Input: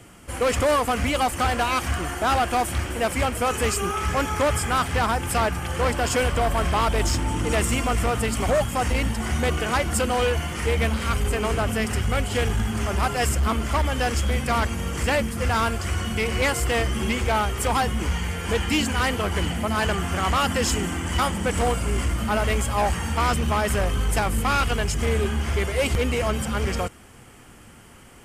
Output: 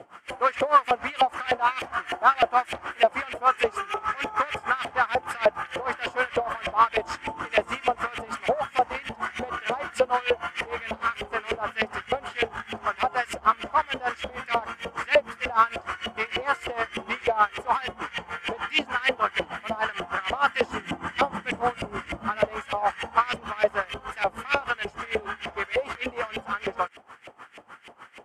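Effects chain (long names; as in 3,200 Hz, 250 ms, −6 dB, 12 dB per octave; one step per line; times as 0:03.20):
0:20.68–0:22.45: parametric band 150 Hz +10.5 dB 2.5 octaves
in parallel at +2.5 dB: downward compressor, threshold −33 dBFS, peak gain reduction 18 dB
on the sum: auto-filter band-pass saw up 3.3 Hz 570–2,600 Hz
tremolo with a sine in dB 6.6 Hz, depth 19 dB
level +8 dB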